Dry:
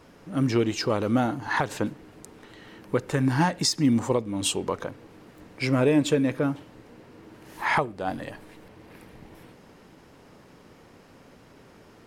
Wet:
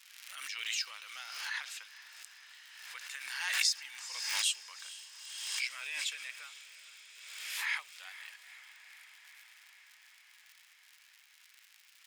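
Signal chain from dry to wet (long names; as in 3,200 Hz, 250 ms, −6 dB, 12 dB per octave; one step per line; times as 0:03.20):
surface crackle 110 per second −37 dBFS
four-pole ladder high-pass 1,800 Hz, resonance 25%
on a send: feedback delay with all-pass diffusion 464 ms, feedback 76%, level −15 dB
on the sum: background raised ahead of every attack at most 40 dB per second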